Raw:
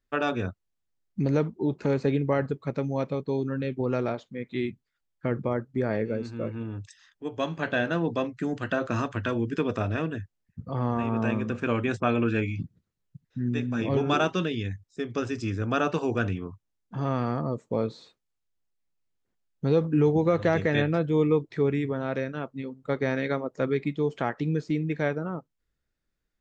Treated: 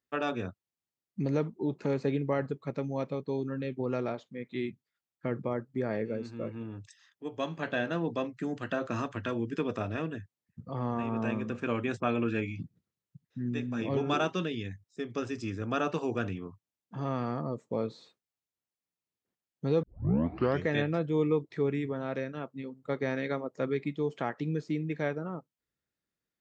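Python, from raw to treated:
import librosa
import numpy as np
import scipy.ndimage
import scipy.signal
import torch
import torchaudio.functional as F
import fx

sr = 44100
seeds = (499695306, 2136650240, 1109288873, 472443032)

y = fx.edit(x, sr, fx.tape_start(start_s=19.83, length_s=0.83), tone=tone)
y = scipy.signal.sosfilt(scipy.signal.butter(2, 110.0, 'highpass', fs=sr, output='sos'), y)
y = fx.notch(y, sr, hz=1500.0, q=21.0)
y = y * librosa.db_to_amplitude(-4.5)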